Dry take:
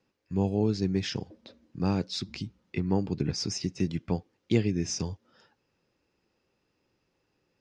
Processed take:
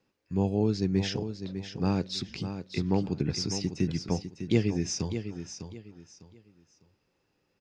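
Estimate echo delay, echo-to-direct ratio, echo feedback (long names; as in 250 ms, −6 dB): 602 ms, −9.0 dB, 27%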